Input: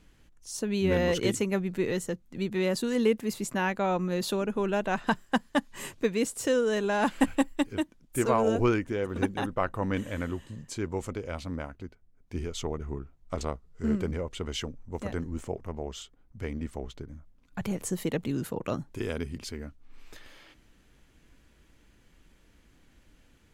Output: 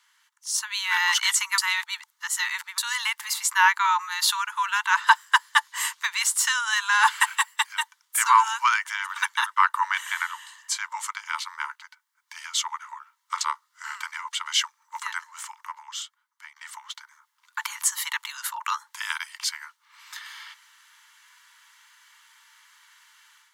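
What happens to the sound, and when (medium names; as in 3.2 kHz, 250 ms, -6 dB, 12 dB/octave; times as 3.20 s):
1.58–2.78 s: reverse
8.86–10.22 s: tape noise reduction on one side only encoder only
15.54–16.56 s: fade out, to -16.5 dB
whole clip: Chebyshev high-pass 880 Hz, order 10; band-stop 2.5 kHz, Q 8.5; level rider gain up to 8.5 dB; trim +5.5 dB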